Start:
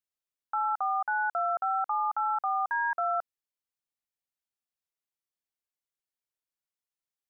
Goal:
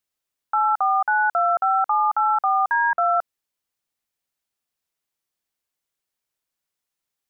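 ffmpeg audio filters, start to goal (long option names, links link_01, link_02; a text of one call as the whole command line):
ffmpeg -i in.wav -filter_complex "[0:a]asettb=1/sr,asplit=3[link_01][link_02][link_03];[link_01]atrim=end=2.754[link_04];[link_02]atrim=start=2.75:end=3.17,asetpts=PTS-STARTPTS,afade=type=in:duration=0.004:curve=qsin,afade=type=out:start_time=0.416:duration=0.004:curve=qsin,bass=frequency=250:gain=8,treble=frequency=4000:gain=-14[link_05];[link_03]atrim=start=3.166[link_06];[link_04][link_05]acrossfade=duration=0.004:curve1=hsin:curve2=qsin[link_07];[link_07][link_06]acrossfade=duration=0.004:curve1=qsin:curve2=hsin,volume=9dB" out.wav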